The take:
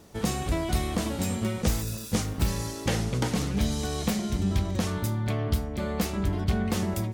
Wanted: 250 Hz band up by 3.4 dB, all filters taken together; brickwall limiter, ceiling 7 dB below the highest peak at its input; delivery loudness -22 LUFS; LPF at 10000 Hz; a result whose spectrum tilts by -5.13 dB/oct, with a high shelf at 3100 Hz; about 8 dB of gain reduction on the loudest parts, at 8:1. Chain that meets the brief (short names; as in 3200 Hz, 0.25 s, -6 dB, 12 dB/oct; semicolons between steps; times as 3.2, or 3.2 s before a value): LPF 10000 Hz; bell 250 Hz +4.5 dB; high shelf 3100 Hz +5 dB; compressor 8:1, threshold -27 dBFS; gain +11 dB; limiter -12.5 dBFS